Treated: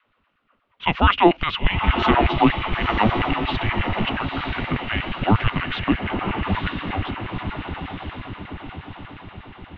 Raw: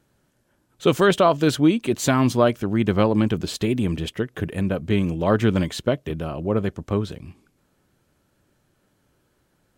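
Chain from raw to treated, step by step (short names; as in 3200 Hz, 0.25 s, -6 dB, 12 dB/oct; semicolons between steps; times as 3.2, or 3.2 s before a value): tilt shelf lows -6 dB, about 1300 Hz; on a send: diffused feedback echo 0.937 s, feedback 54%, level -4 dB; on the sum: LFO high-pass saw down 8.4 Hz 240–2400 Hz; mistuned SSB -320 Hz 200–3500 Hz; gain +2 dB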